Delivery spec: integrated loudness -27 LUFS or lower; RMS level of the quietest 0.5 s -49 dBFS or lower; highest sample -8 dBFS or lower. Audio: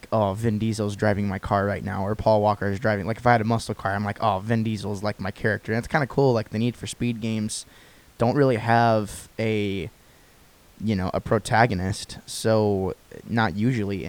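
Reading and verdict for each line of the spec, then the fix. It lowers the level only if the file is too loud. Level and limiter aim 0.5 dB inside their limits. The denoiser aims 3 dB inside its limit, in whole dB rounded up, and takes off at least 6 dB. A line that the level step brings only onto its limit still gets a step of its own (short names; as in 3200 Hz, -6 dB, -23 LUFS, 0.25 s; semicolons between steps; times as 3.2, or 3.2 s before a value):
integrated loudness -24.0 LUFS: fail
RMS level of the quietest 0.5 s -54 dBFS: OK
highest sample -4.5 dBFS: fail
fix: gain -3.5 dB; limiter -8.5 dBFS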